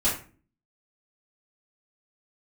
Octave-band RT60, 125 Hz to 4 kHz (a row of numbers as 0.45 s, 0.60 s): 0.60 s, 0.65 s, 0.40 s, 0.35 s, 0.35 s, 0.25 s